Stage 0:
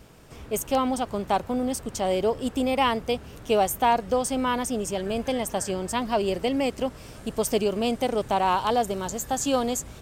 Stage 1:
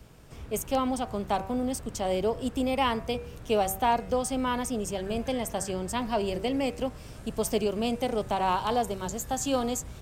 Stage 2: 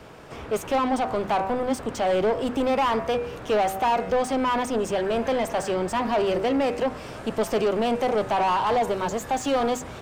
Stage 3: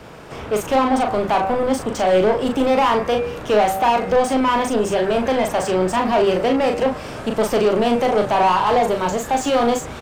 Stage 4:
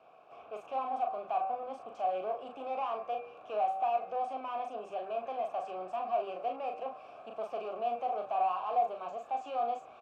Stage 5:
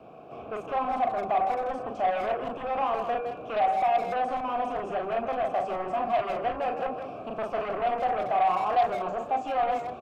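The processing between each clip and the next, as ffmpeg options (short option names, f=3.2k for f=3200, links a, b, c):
-filter_complex "[0:a]bandreject=f=95.88:t=h:w=4,bandreject=f=191.76:t=h:w=4,bandreject=f=287.64:t=h:w=4,bandreject=f=383.52:t=h:w=4,bandreject=f=479.4:t=h:w=4,bandreject=f=575.28:t=h:w=4,bandreject=f=671.16:t=h:w=4,bandreject=f=767.04:t=h:w=4,bandreject=f=862.92:t=h:w=4,bandreject=f=958.8:t=h:w=4,bandreject=f=1.05468k:t=h:w=4,bandreject=f=1.15056k:t=h:w=4,bandreject=f=1.24644k:t=h:w=4,bandreject=f=1.34232k:t=h:w=4,bandreject=f=1.4382k:t=h:w=4,bandreject=f=1.53408k:t=h:w=4,bandreject=f=1.62996k:t=h:w=4,bandreject=f=1.72584k:t=h:w=4,bandreject=f=1.82172k:t=h:w=4,bandreject=f=1.9176k:t=h:w=4,bandreject=f=2.01348k:t=h:w=4,bandreject=f=2.10936k:t=h:w=4,bandreject=f=2.20524k:t=h:w=4,bandreject=f=2.30112k:t=h:w=4,bandreject=f=2.397k:t=h:w=4,bandreject=f=2.49288k:t=h:w=4,bandreject=f=2.58876k:t=h:w=4,bandreject=f=2.68464k:t=h:w=4,acrossover=split=160|1100|5500[a][b][c][d];[a]acontrast=28[e];[e][b][c][d]amix=inputs=4:normalize=0,volume=-3.5dB"
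-filter_complex "[0:a]asplit=2[a][b];[b]highpass=f=720:p=1,volume=24dB,asoftclip=type=tanh:threshold=-13.5dB[c];[a][c]amix=inputs=2:normalize=0,lowpass=f=1.2k:p=1,volume=-6dB,bandreject=f=50:t=h:w=6,bandreject=f=100:t=h:w=6,bandreject=f=150:t=h:w=6,bandreject=f=200:t=h:w=6,bandreject=f=250:t=h:w=6"
-filter_complex "[0:a]asplit=2[a][b];[b]adelay=38,volume=-5.5dB[c];[a][c]amix=inputs=2:normalize=0,volume=5dB"
-filter_complex "[0:a]asplit=3[a][b][c];[a]bandpass=f=730:t=q:w=8,volume=0dB[d];[b]bandpass=f=1.09k:t=q:w=8,volume=-6dB[e];[c]bandpass=f=2.44k:t=q:w=8,volume=-9dB[f];[d][e][f]amix=inputs=3:normalize=0,volume=-9dB"
-filter_complex "[0:a]acrossover=split=360[a][b];[a]aeval=exprs='0.00891*sin(PI/2*5.01*val(0)/0.00891)':c=same[c];[c][b]amix=inputs=2:normalize=0,asplit=2[d][e];[e]adelay=160,highpass=300,lowpass=3.4k,asoftclip=type=hard:threshold=-29.5dB,volume=-7dB[f];[d][f]amix=inputs=2:normalize=0,volume=6dB"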